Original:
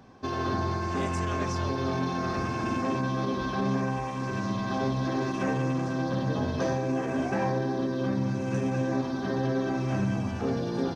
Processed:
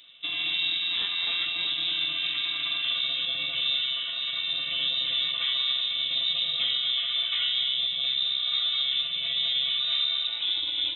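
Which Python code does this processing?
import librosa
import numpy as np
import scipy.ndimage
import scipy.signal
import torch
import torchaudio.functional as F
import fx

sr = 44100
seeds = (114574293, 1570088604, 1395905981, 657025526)

p1 = x + fx.echo_single(x, sr, ms=252, db=-9.5, dry=0)
y = fx.freq_invert(p1, sr, carrier_hz=3800)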